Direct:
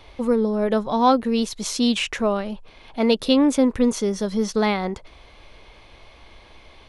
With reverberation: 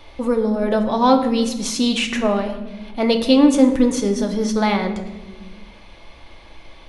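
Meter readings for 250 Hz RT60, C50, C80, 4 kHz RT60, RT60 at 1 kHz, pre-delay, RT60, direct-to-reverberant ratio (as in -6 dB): 2.1 s, 9.0 dB, 11.0 dB, 0.75 s, 0.95 s, 3 ms, 1.2 s, 4.0 dB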